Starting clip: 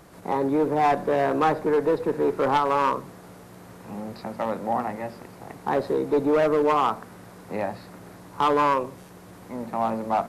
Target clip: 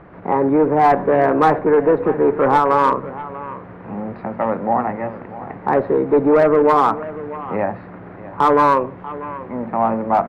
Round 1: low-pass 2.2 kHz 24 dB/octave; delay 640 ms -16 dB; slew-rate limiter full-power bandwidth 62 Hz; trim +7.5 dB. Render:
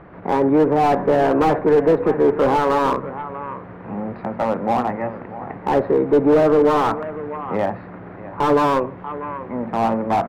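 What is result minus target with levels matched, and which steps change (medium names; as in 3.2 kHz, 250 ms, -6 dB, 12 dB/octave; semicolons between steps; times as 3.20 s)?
slew-rate limiter: distortion +20 dB
change: slew-rate limiter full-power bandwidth 166 Hz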